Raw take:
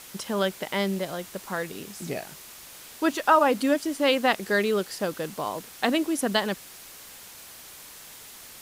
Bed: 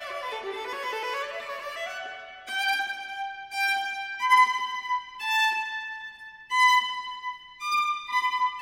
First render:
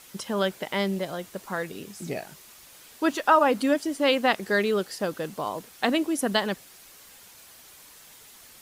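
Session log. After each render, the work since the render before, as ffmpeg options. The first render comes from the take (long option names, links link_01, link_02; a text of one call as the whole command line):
ffmpeg -i in.wav -af "afftdn=noise_reduction=6:noise_floor=-46" out.wav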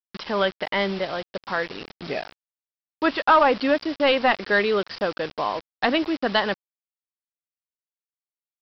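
ffmpeg -i in.wav -filter_complex "[0:a]asplit=2[link_01][link_02];[link_02]highpass=frequency=720:poles=1,volume=13dB,asoftclip=type=tanh:threshold=-7dB[link_03];[link_01][link_03]amix=inputs=2:normalize=0,lowpass=frequency=3000:poles=1,volume=-6dB,aresample=11025,acrusher=bits=5:mix=0:aa=0.000001,aresample=44100" out.wav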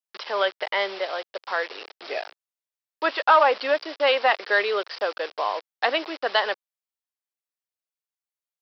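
ffmpeg -i in.wav -af "highpass=frequency=440:width=0.5412,highpass=frequency=440:width=1.3066" out.wav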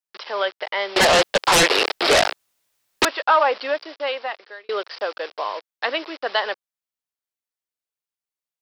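ffmpeg -i in.wav -filter_complex "[0:a]asettb=1/sr,asplit=3[link_01][link_02][link_03];[link_01]atrim=end=0.964[link_04];[link_02]atrim=start=0.96:end=3.05,asetpts=PTS-STARTPTS,afade=type=in:duration=0.004:curve=qsin,afade=type=out:start_time=2.086:duration=0.004:curve=qsin,aeval=exprs='0.282*sin(PI/2*7.94*val(0)/0.282)':channel_layout=same[link_05];[link_03]atrim=start=3.046[link_06];[link_04][link_05]acrossfade=duration=0.004:curve1=hsin:curve2=qsin[link_07];[link_07][link_06]acrossfade=duration=0.004:curve1=qsin:curve2=hsin,asettb=1/sr,asplit=3[link_08][link_09][link_10];[link_08]atrim=end=5.434[link_11];[link_09]atrim=start=5.43:end=6.22,asetpts=PTS-STARTPTS,afade=type=in:duration=0.004:curve=qsin,afade=type=out:start_time=0.786:duration=0.004:curve=qsin,equalizer=frequency=750:width_type=o:width=0.2:gain=-8.5[link_12];[link_10]atrim=start=6.216[link_13];[link_11][link_12]acrossfade=duration=0.004:curve1=hsin:curve2=qsin[link_14];[link_14][link_13]acrossfade=duration=0.004:curve1=qsin:curve2=hsin,asplit=2[link_15][link_16];[link_15]atrim=end=4.69,asetpts=PTS-STARTPTS,afade=type=out:start_time=3.58:duration=1.11[link_17];[link_16]atrim=start=4.69,asetpts=PTS-STARTPTS,afade=type=in:duration=0.004:curve=hsin[link_18];[link_17][link_18]concat=n=2:v=0:a=1" out.wav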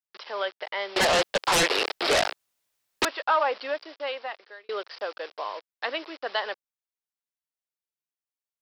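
ffmpeg -i in.wav -af "volume=-6.5dB" out.wav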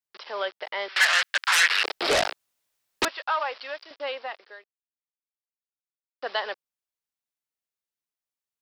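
ffmpeg -i in.wav -filter_complex "[0:a]asettb=1/sr,asplit=3[link_01][link_02][link_03];[link_01]atrim=end=0.884[link_04];[link_02]atrim=start=0.88:end=1.84,asetpts=PTS-STARTPTS,afade=type=in:duration=0.004:curve=qsin,afade=type=out:start_time=0.956:duration=0.004:curve=qsin,highpass=frequency=1600:width_type=q:width=2.5[link_05];[link_03]atrim=start=1.836[link_06];[link_04][link_05]acrossfade=duration=0.004:curve1=hsin:curve2=qsin[link_07];[link_07][link_06]acrossfade=duration=0.004:curve1=qsin:curve2=hsin,asettb=1/sr,asplit=3[link_08][link_09][link_10];[link_08]atrim=end=3.084[link_11];[link_09]atrim=start=3.08:end=3.91,asetpts=PTS-STARTPTS,afade=type=in:duration=0.004:curve=qsin,afade=type=out:start_time=0.826:duration=0.004:curve=qsin,highpass=frequency=1200:poles=1[link_12];[link_10]atrim=start=3.906[link_13];[link_11][link_12]acrossfade=duration=0.004:curve1=hsin:curve2=qsin[link_14];[link_14][link_13]acrossfade=duration=0.004:curve1=qsin:curve2=hsin,asplit=3[link_15][link_16][link_17];[link_15]atrim=end=4.64,asetpts=PTS-STARTPTS,afade=type=out:start_time=4.636:duration=0.004:curve=hsin[link_18];[link_16]atrim=start=4.64:end=6.22,asetpts=PTS-STARTPTS,volume=0[link_19];[link_17]atrim=start=6.22,asetpts=PTS-STARTPTS,afade=type=in:duration=0.004:curve=hsin[link_20];[link_18][link_19][link_20]concat=n=3:v=0:a=1" out.wav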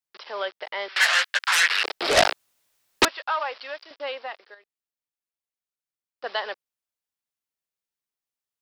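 ffmpeg -i in.wav -filter_complex "[0:a]asettb=1/sr,asplit=3[link_01][link_02][link_03];[link_01]atrim=end=0.984[link_04];[link_02]atrim=start=0.98:end=1.39,asetpts=PTS-STARTPTS,afade=type=in:duration=0.004:curve=qsin,afade=type=out:start_time=0.406:duration=0.004:curve=qsin,asplit=2[link_05][link_06];[link_06]adelay=15,volume=-6.5dB[link_07];[link_05][link_07]amix=inputs=2:normalize=0,atrim=end_sample=18081[link_08];[link_03]atrim=start=1.386[link_09];[link_04][link_08]acrossfade=duration=0.004:curve1=hsin:curve2=qsin[link_10];[link_10][link_09]acrossfade=duration=0.004:curve1=qsin:curve2=hsin,asplit=3[link_11][link_12][link_13];[link_11]afade=type=out:start_time=2.16:duration=0.02[link_14];[link_12]acontrast=89,afade=type=in:start_time=2.16:duration=0.02,afade=type=out:start_time=3.04:duration=0.02[link_15];[link_13]afade=type=in:start_time=3.04:duration=0.02[link_16];[link_14][link_15][link_16]amix=inputs=3:normalize=0,asettb=1/sr,asplit=3[link_17][link_18][link_19];[link_17]atrim=end=4.544[link_20];[link_18]atrim=start=4.54:end=6.24,asetpts=PTS-STARTPTS,afade=type=in:duration=0.004:curve=qsin,afade=type=out:start_time=1.696:duration=0.004:curve=qsin,acompressor=threshold=-48dB:ratio=6:attack=3.2:release=140:knee=1:detection=peak[link_21];[link_19]atrim=start=6.236[link_22];[link_20][link_21]acrossfade=duration=0.004:curve1=hsin:curve2=qsin[link_23];[link_23][link_22]acrossfade=duration=0.004:curve1=qsin:curve2=hsin" out.wav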